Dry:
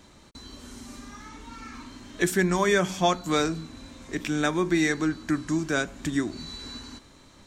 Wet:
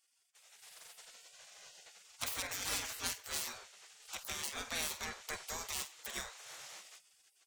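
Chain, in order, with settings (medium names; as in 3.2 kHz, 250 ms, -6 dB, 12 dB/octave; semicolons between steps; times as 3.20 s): tracing distortion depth 0.12 ms; level rider gain up to 8 dB; on a send: flutter echo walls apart 8.3 m, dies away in 0.23 s; on the sum: spectral gate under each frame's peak -25 dB weak; 4.05–5.84 s: three bands compressed up and down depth 40%; trim -8 dB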